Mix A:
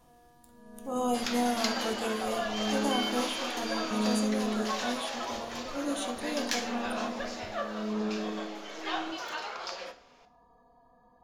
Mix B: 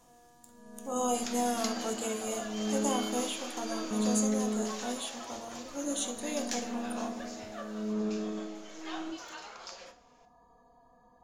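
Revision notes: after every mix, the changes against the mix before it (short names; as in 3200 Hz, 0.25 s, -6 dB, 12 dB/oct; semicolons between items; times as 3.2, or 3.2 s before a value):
speech: add low shelf 160 Hz -9.5 dB; second sound -9.0 dB; master: add bell 6900 Hz +10.5 dB 0.58 oct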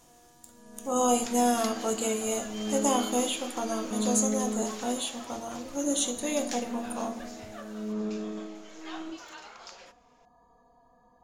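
speech +6.0 dB; second sound: send off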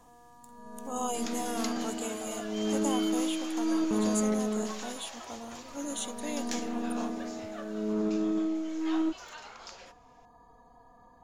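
speech -6.0 dB; first sound +7.5 dB; reverb: off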